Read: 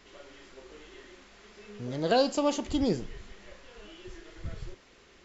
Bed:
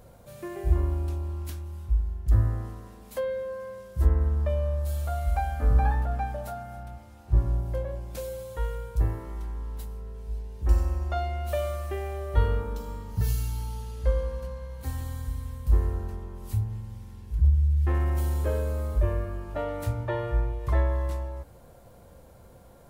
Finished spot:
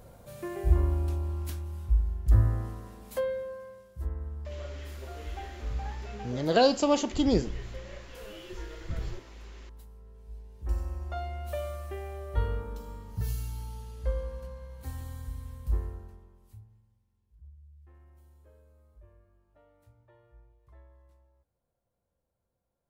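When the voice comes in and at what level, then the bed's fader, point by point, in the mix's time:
4.45 s, +2.5 dB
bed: 3.2 s 0 dB
4.05 s -13 dB
9.92 s -13 dB
11.28 s -6 dB
15.66 s -6 dB
17.05 s -31.5 dB

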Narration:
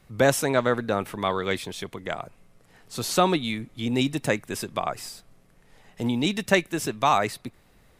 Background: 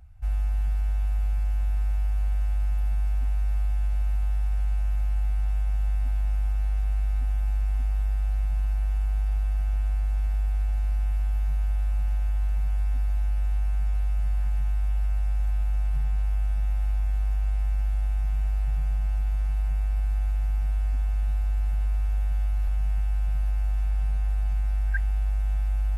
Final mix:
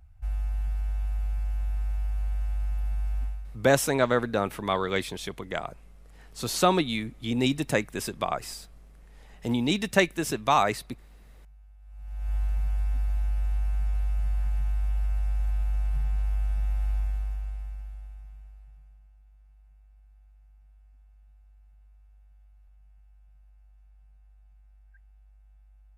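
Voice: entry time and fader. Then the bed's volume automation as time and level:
3.45 s, -1.0 dB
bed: 3.23 s -4 dB
3.7 s -27.5 dB
11.79 s -27.5 dB
12.33 s -2 dB
16.99 s -2 dB
19.14 s -31.5 dB

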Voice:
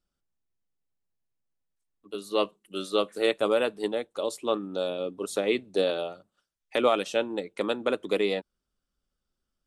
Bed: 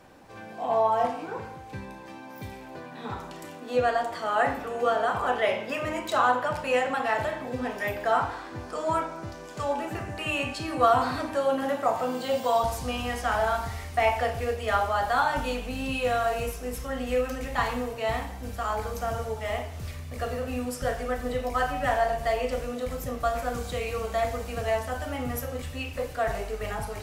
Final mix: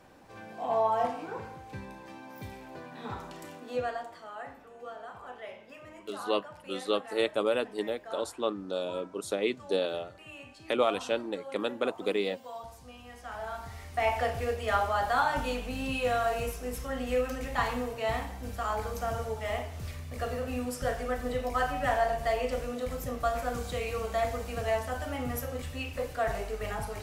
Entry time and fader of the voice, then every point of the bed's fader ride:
3.95 s, -3.5 dB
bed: 3.55 s -3.5 dB
4.42 s -18.5 dB
13.04 s -18.5 dB
14.2 s -2.5 dB

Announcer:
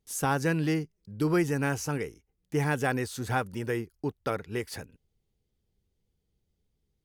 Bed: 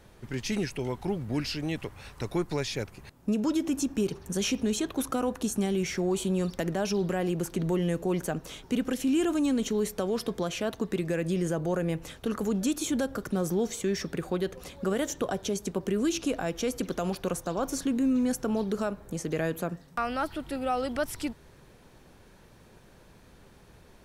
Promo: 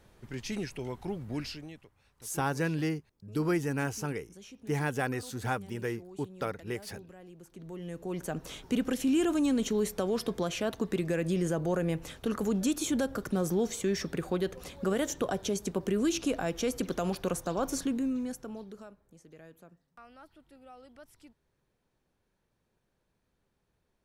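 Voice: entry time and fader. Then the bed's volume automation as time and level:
2.15 s, -3.5 dB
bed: 1.46 s -5.5 dB
1.89 s -22 dB
7.37 s -22 dB
8.47 s -1 dB
17.78 s -1 dB
19.13 s -23 dB

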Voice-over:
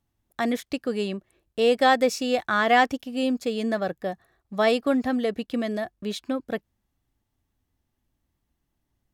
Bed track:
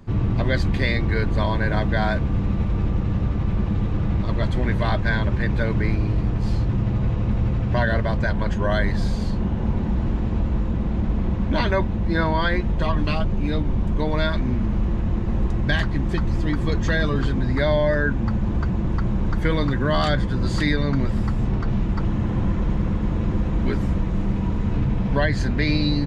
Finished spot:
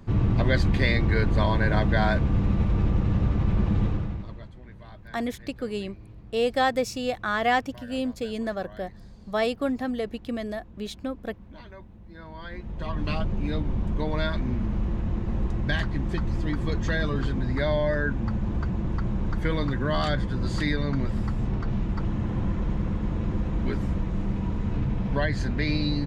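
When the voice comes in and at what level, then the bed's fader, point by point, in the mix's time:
4.75 s, -4.0 dB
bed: 3.87 s -1 dB
4.54 s -24.5 dB
12.14 s -24.5 dB
13.12 s -5 dB

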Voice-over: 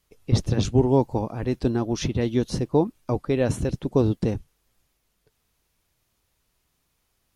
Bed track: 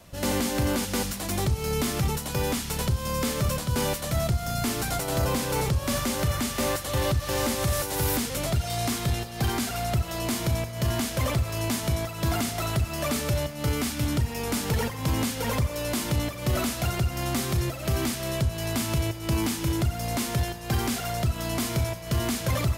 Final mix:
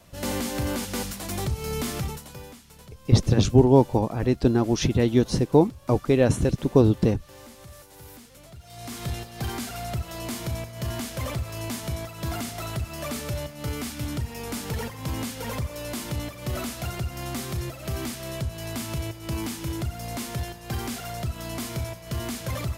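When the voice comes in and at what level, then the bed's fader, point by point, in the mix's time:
2.80 s, +3.0 dB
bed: 1.97 s -2.5 dB
2.61 s -20 dB
8.58 s -20 dB
9.04 s -4.5 dB

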